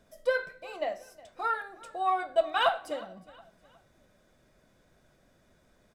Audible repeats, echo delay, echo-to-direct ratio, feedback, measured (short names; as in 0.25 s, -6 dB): 2, 0.363 s, -20.5 dB, 39%